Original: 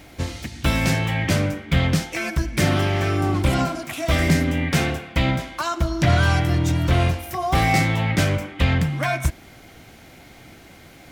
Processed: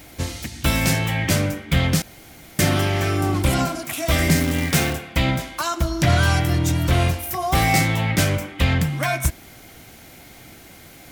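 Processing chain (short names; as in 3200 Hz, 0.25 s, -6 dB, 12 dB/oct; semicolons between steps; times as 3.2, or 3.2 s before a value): 2.02–2.59 room tone; high shelf 7200 Hz +12 dB; 4.36–4.93 companded quantiser 4-bit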